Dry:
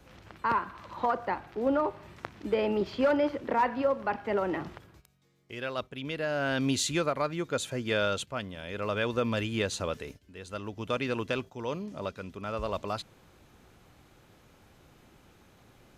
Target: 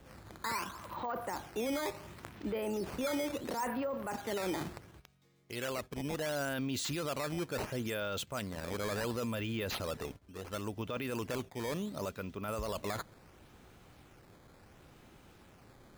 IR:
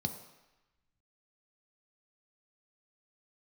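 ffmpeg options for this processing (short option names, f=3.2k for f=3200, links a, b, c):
-af "acrusher=samples=9:mix=1:aa=0.000001:lfo=1:lforange=14.4:lforate=0.71,alimiter=level_in=5dB:limit=-24dB:level=0:latency=1:release=13,volume=-5dB"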